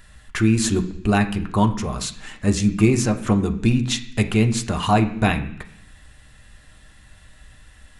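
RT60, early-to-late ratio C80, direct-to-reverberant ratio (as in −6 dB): 0.70 s, 15.5 dB, 5.0 dB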